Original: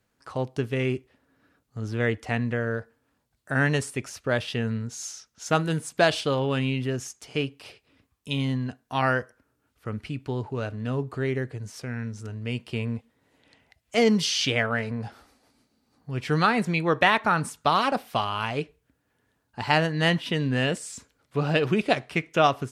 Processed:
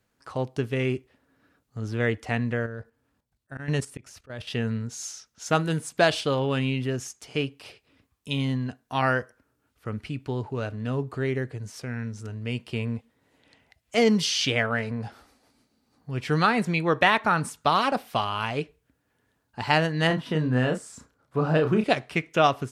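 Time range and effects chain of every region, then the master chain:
2.66–4.51 auto swell 0.17 s + low shelf 190 Hz +6.5 dB + level quantiser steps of 12 dB
20.07–21.84 resonant high shelf 1800 Hz -7 dB, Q 1.5 + doubler 32 ms -6 dB
whole clip: dry

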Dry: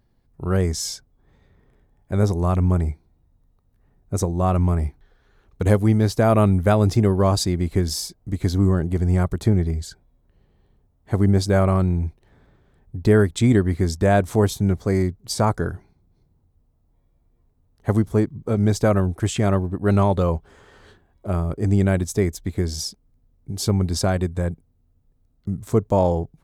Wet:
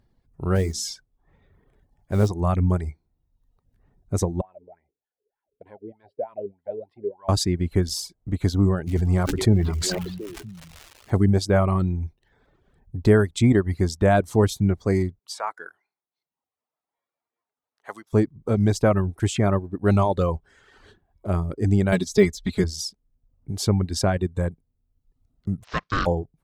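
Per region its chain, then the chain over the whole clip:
0.55–2.29 notches 60/120/180/240/300/360 Hz + modulation noise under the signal 28 dB
4.41–7.29 wah 3.3 Hz 410–1100 Hz, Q 11 + fixed phaser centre 2800 Hz, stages 4
8.86–11.16 crackle 330/s -35 dBFS + delay with a stepping band-pass 0.242 s, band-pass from 2900 Hz, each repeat -1.4 oct, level -9 dB + sustainer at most 24 dB/s
15.19–18.13 HPF 1100 Hz + high shelf 3100 Hz -8.5 dB
21.92–22.64 de-esser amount 85% + bell 4200 Hz +12.5 dB 1.6 oct + comb 4.8 ms, depth 98%
25.63–26.05 spectral contrast lowered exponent 0.52 + elliptic band-pass 490–4900 Hz + ring modulator 610 Hz
whole clip: reverb removal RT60 0.79 s; high shelf 11000 Hz -7.5 dB

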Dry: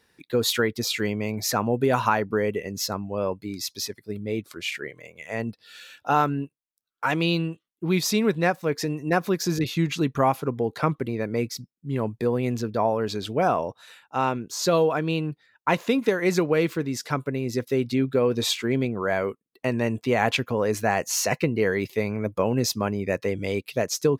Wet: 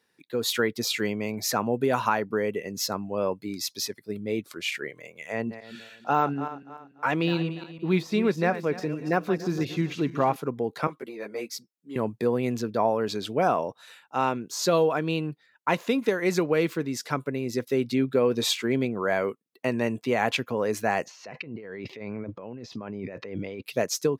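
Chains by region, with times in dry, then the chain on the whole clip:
5.32–10.36 regenerating reverse delay 0.145 s, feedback 56%, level -12.5 dB + de-esser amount 75% + high shelf 5500 Hz -10.5 dB
10.87–11.96 HPF 150 Hz + tone controls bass -13 dB, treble +2 dB + ensemble effect
21.05–23.63 negative-ratio compressor -35 dBFS + air absorption 220 m
whole clip: HPF 140 Hz; AGC gain up to 7 dB; gain -7 dB

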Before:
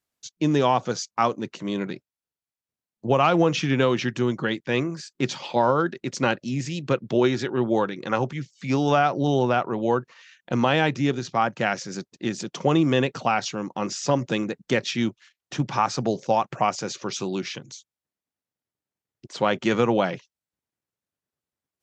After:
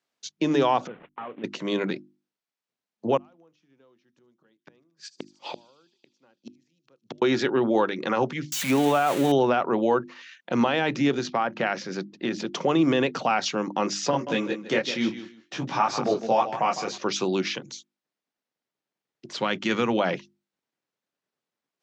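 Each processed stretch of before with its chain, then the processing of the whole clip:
0.87–1.44 CVSD 16 kbps + compressor 5:1, threshold -39 dBFS
3.17–7.22 dynamic EQ 2400 Hz, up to -7 dB, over -40 dBFS, Q 0.99 + flipped gate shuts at -24 dBFS, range -42 dB + thin delay 76 ms, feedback 77%, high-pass 5300 Hz, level -14.5 dB
8.52–9.32 switching spikes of -16 dBFS + bell 5000 Hz -10.5 dB 0.55 oct
11.29–12.48 LPF 4400 Hz + de-hum 105.5 Hz, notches 3 + compressor, threshold -23 dBFS
14.11–16.98 feedback echo 0.156 s, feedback 18%, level -12 dB + detuned doubles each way 18 cents
19.35–20 HPF 48 Hz + bell 610 Hz -9.5 dB 2 oct
whole clip: limiter -15.5 dBFS; three-band isolator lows -21 dB, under 160 Hz, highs -14 dB, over 6300 Hz; notches 50/100/150/200/250/300/350 Hz; gain +4.5 dB

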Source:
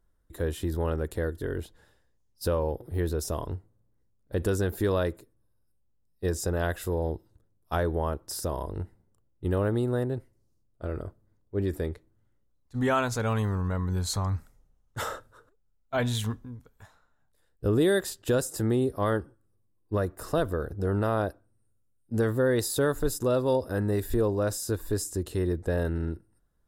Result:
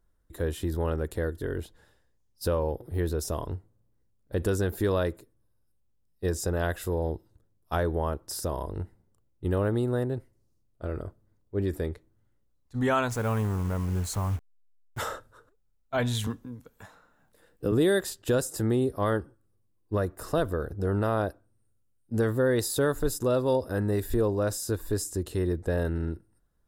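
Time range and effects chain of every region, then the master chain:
13.1–14.99 level-crossing sampler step -39 dBFS + bell 4100 Hz -8 dB 0.99 oct
16.27–17.72 tilt +1.5 dB/oct + small resonant body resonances 200/300/480/2700 Hz, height 7 dB, ringing for 35 ms + three-band squash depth 40%
whole clip: dry

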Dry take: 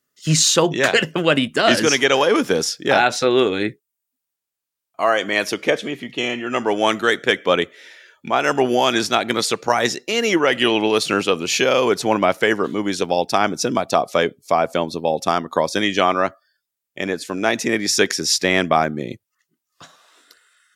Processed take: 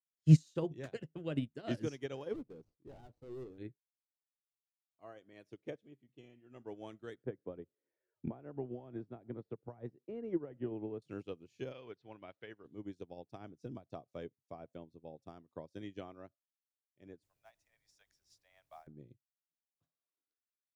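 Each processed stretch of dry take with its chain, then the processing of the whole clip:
2.33–3.58 median filter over 25 samples + hard clip -18 dBFS
7.23–11.02 Bessel low-pass 910 Hz + three-band squash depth 100%
11.72–12.65 LPF 4200 Hz 24 dB/oct + tilt shelf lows -7 dB, about 860 Hz
17.23–18.87 steep high-pass 630 Hz 48 dB/oct + requantised 6-bit, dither triangular
whole clip: EQ curve 130 Hz 0 dB, 190 Hz -11 dB, 300 Hz -9 dB, 1200 Hz -23 dB; upward expander 2.5:1, over -42 dBFS; gain +3.5 dB

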